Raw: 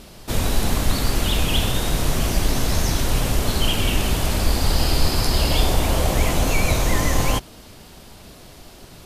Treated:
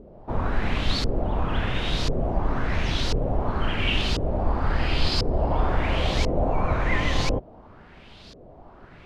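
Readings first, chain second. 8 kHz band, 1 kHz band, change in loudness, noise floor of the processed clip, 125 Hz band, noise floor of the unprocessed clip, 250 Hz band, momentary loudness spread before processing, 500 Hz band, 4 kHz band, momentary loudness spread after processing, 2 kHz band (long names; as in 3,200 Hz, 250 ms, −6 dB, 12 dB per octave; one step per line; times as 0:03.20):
−17.5 dB, −2.0 dB, −4.5 dB, −48 dBFS, −4.5 dB, −44 dBFS, −4.0 dB, 2 LU, −2.0 dB, −5.5 dB, 3 LU, −2.5 dB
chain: auto-filter low-pass saw up 0.96 Hz 440–5,100 Hz
level −4.5 dB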